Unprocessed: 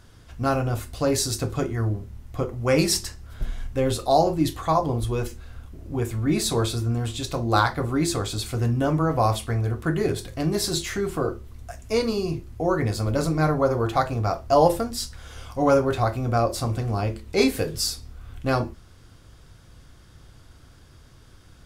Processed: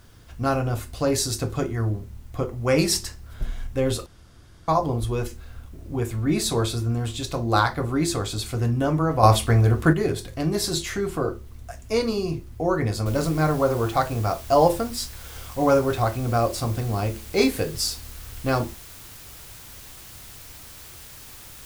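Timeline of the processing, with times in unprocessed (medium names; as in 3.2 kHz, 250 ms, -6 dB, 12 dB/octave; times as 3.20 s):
4.06–4.68 s: room tone
9.23–9.93 s: gain +7 dB
13.06 s: noise floor step -65 dB -44 dB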